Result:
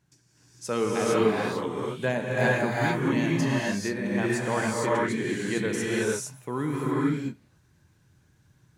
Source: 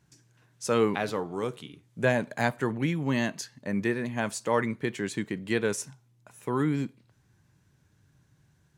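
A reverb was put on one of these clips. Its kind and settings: non-linear reverb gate 0.49 s rising, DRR -5.5 dB; gain -3.5 dB

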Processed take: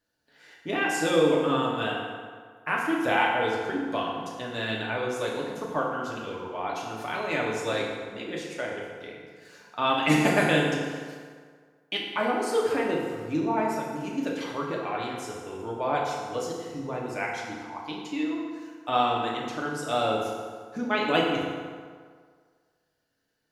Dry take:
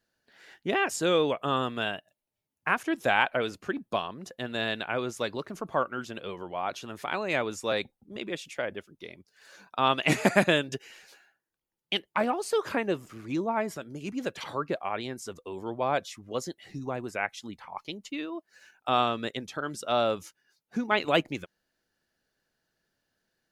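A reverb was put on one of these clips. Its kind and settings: FDN reverb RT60 1.8 s, low-frequency decay 0.9×, high-frequency decay 0.65×, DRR -3.5 dB; gain -3.5 dB

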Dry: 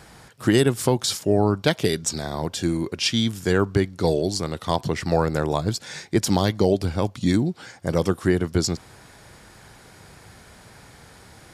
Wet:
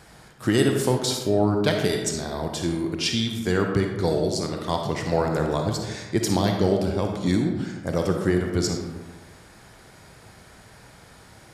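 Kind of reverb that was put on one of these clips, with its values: digital reverb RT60 1.3 s, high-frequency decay 0.5×, pre-delay 10 ms, DRR 2.5 dB; gain -3 dB

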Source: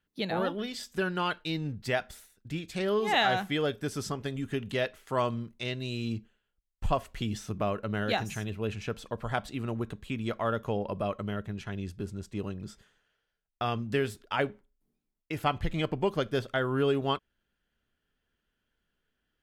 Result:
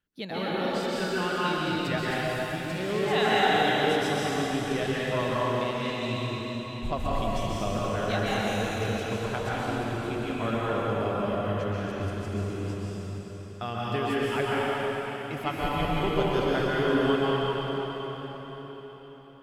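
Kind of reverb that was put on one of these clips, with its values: plate-style reverb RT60 4.8 s, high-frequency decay 0.95×, pre-delay 0.115 s, DRR -8 dB; gain -4 dB

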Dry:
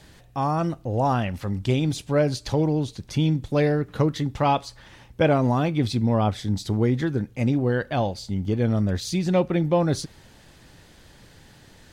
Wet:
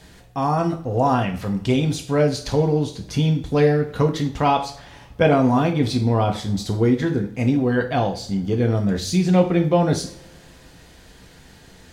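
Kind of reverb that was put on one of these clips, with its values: two-slope reverb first 0.41 s, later 2.2 s, from -26 dB, DRR 3 dB; gain +2 dB

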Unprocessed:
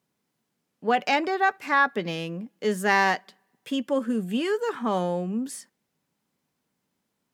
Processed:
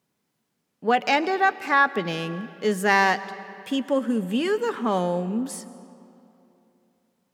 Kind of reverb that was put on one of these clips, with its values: digital reverb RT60 3 s, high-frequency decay 0.7×, pre-delay 80 ms, DRR 15.5 dB; gain +2 dB

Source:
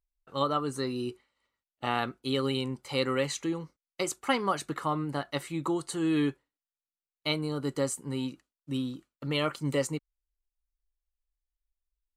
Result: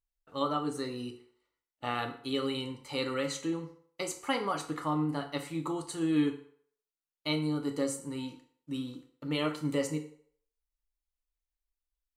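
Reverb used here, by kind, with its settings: FDN reverb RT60 0.58 s, low-frequency decay 0.7×, high-frequency decay 0.8×, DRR 3.5 dB; gain -4.5 dB

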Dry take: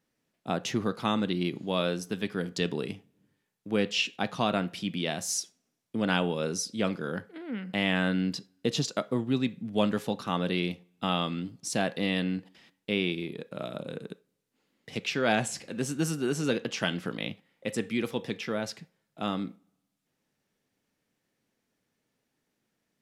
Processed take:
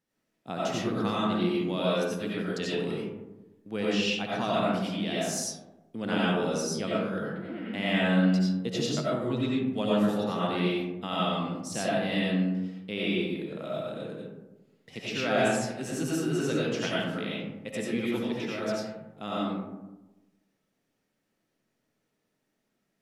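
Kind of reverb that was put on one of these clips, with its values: digital reverb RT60 1.1 s, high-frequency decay 0.35×, pre-delay 50 ms, DRR -6.5 dB; gain -6.5 dB

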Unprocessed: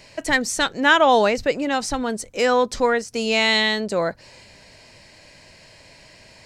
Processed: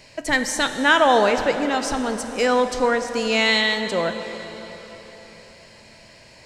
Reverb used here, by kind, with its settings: plate-style reverb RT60 4.4 s, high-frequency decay 0.8×, DRR 7 dB; gain -1 dB

